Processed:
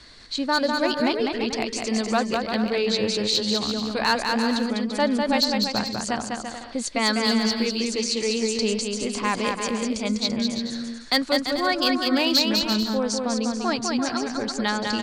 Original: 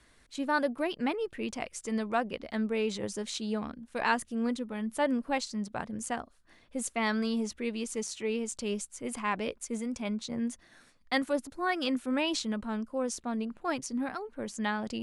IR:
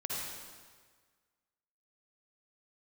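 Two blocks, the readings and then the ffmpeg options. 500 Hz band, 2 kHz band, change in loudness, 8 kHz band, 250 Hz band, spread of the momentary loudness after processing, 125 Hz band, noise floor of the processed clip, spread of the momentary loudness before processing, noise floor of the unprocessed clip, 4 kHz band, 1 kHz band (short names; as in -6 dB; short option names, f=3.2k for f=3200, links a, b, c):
+8.5 dB, +8.0 dB, +9.5 dB, +9.0 dB, +8.5 dB, 6 LU, +8.5 dB, -37 dBFS, 7 LU, -62 dBFS, +16.5 dB, +8.0 dB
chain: -filter_complex "[0:a]lowpass=f=8k:w=0.5412,lowpass=f=8k:w=1.3066,equalizer=f=4.4k:w=3.1:g=15,asplit=2[a][b];[b]acompressor=threshold=-44dB:ratio=8,volume=1.5dB[c];[a][c]amix=inputs=2:normalize=0,volume=18dB,asoftclip=hard,volume=-18dB,aecho=1:1:200|340|438|506.6|554.6:0.631|0.398|0.251|0.158|0.1,volume=4.5dB"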